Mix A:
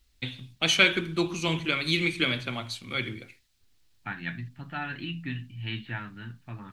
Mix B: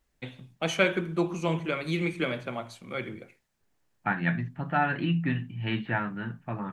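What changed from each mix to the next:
first voice -9.5 dB; master: add EQ curve 100 Hz 0 dB, 180 Hz +12 dB, 260 Hz +6 dB, 560 Hz +15 dB, 1900 Hz +5 dB, 4100 Hz -5 dB, 6600 Hz +2 dB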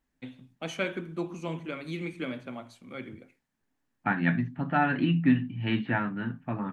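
first voice -7.5 dB; master: add bell 260 Hz +11 dB 0.31 oct

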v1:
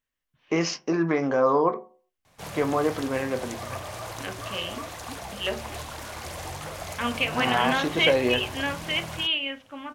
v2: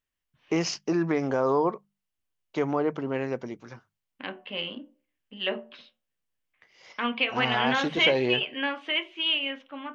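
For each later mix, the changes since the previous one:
first voice: send off; background: muted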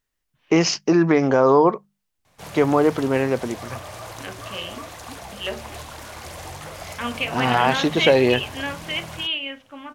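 first voice +9.0 dB; background: unmuted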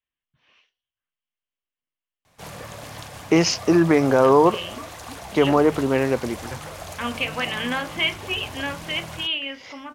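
first voice: entry +2.80 s

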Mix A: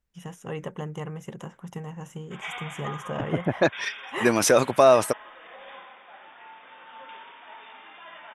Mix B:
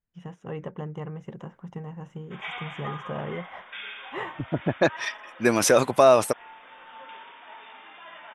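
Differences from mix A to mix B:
first voice: add tape spacing loss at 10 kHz 25 dB; second voice: entry +1.20 s

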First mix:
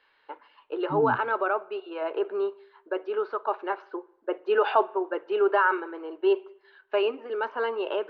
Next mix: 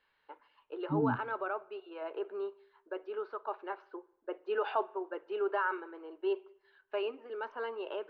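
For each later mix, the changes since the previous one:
first voice -10.0 dB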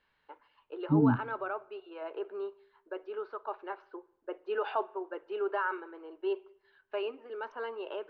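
second voice +7.5 dB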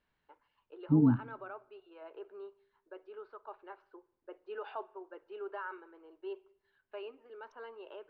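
first voice -9.5 dB

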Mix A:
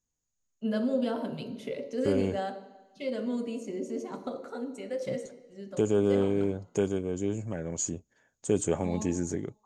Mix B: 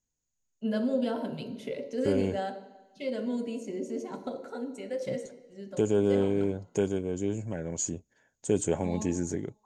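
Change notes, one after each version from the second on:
master: add Butterworth band-stop 1200 Hz, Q 7.7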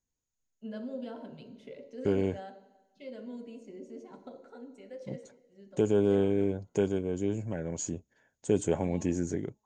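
first voice -10.5 dB; master: add air absorption 65 m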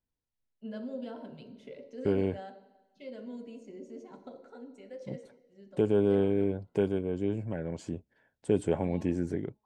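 second voice: remove synth low-pass 6700 Hz, resonance Q 16

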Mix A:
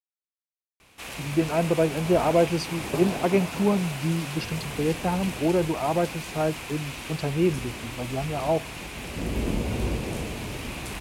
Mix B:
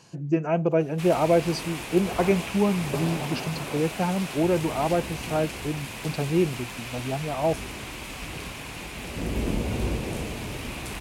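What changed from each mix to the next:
speech: entry -1.05 s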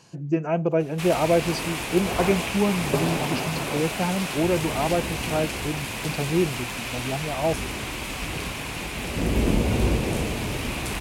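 background +5.5 dB

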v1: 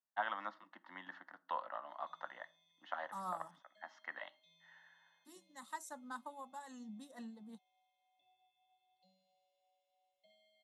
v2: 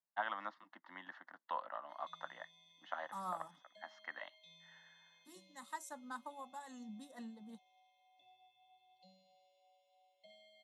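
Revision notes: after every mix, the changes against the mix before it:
background +8.5 dB; reverb: off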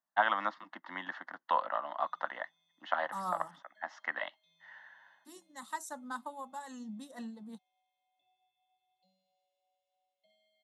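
first voice +11.0 dB; second voice +6.0 dB; background -10.5 dB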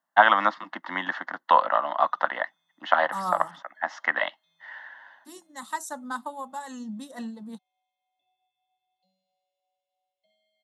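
first voice +11.5 dB; second voice +7.5 dB

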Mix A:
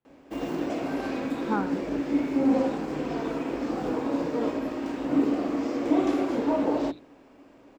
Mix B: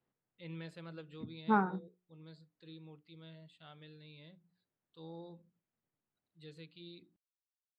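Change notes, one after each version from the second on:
background: muted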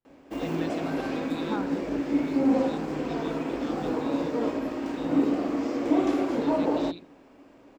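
first voice +9.5 dB; second voice -5.5 dB; background: unmuted

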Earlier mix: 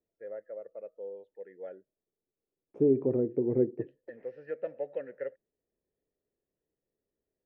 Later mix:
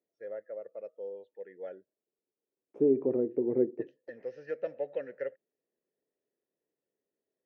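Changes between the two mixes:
first voice: remove air absorption 300 m; second voice: add HPF 220 Hz 12 dB/oct

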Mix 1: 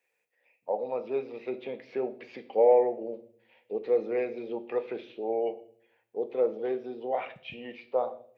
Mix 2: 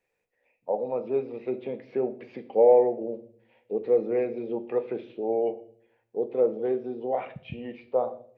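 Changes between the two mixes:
second voice +5.0 dB; master: add tilt -3 dB/oct

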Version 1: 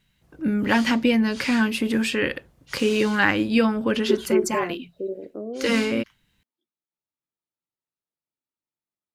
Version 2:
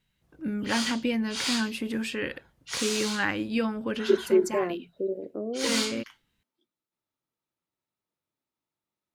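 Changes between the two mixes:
first voice -8.0 dB; background +8.5 dB

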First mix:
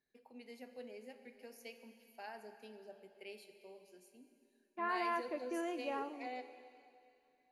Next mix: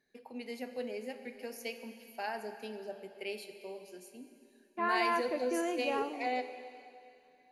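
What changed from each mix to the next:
first voice +11.0 dB; second voice +5.5 dB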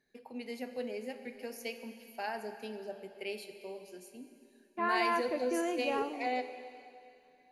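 master: add low shelf 140 Hz +4.5 dB

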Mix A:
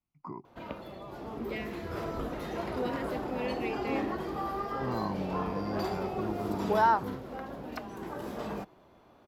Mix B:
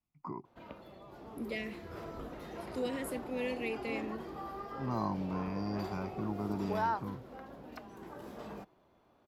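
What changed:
second voice: remove LPF 4700 Hz 12 dB/oct; background -8.5 dB

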